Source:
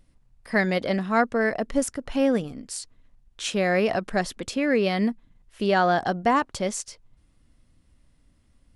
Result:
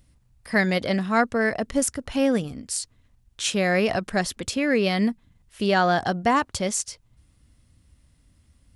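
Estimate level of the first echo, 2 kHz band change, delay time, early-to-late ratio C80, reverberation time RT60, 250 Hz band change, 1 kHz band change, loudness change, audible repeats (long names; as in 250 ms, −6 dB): no echo audible, +2.0 dB, no echo audible, no reverb audible, no reverb audible, +1.0 dB, 0.0 dB, +1.0 dB, no echo audible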